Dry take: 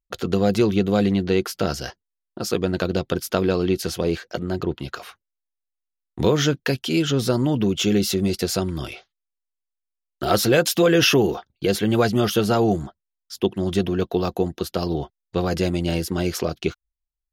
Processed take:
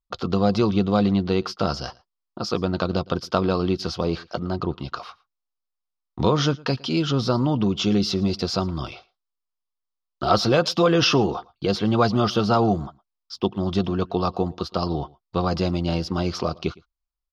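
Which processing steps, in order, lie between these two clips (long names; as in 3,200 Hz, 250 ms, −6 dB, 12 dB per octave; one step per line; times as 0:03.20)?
drawn EQ curve 230 Hz 0 dB, 410 Hz −4 dB, 1,200 Hz +7 dB, 1,700 Hz −8 dB, 5,100 Hz +2 dB, 7,600 Hz −17 dB, 12,000 Hz −27 dB
on a send: single-tap delay 112 ms −24 dB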